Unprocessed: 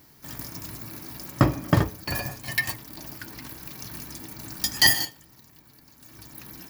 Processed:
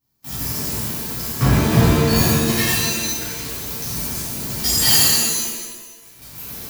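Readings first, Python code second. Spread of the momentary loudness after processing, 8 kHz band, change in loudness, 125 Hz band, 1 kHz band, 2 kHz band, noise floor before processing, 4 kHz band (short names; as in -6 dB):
16 LU, +13.5 dB, +7.5 dB, +9.0 dB, +6.5 dB, +2.5 dB, -55 dBFS, +7.5 dB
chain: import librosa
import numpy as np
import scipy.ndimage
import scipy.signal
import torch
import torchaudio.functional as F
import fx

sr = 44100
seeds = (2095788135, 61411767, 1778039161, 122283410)

y = fx.graphic_eq(x, sr, hz=(250, 500, 2000), db=(-4, -9, -9))
y = fx.leveller(y, sr, passes=5)
y = fx.rev_shimmer(y, sr, seeds[0], rt60_s=1.2, semitones=7, shimmer_db=-2, drr_db=-11.0)
y = y * 10.0 ** (-15.5 / 20.0)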